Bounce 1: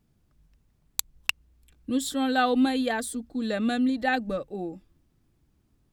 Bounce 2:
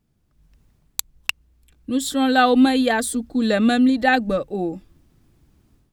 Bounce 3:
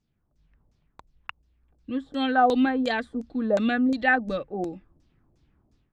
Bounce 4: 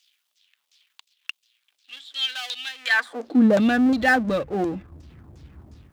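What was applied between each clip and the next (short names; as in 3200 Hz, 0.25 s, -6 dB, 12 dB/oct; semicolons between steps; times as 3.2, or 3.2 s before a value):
AGC gain up to 11 dB; gain -1 dB
LFO low-pass saw down 2.8 Hz 520–6700 Hz; gain -7.5 dB
power-law curve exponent 0.7; high-pass sweep 3200 Hz -> 70 Hz, 2.75–3.71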